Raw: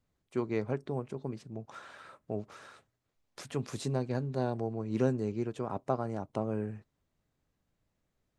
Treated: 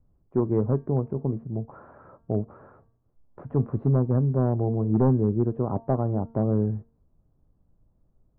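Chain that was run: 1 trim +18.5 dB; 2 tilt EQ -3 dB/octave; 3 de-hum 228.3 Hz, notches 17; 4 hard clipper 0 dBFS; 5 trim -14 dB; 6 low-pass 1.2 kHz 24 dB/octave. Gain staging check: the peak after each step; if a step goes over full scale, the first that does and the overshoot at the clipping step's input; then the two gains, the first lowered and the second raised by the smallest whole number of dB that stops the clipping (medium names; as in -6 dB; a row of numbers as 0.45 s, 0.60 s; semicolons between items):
+3.5 dBFS, +8.0 dBFS, +8.5 dBFS, 0.0 dBFS, -14.0 dBFS, -12.5 dBFS; step 1, 8.5 dB; step 1 +9.5 dB, step 5 -5 dB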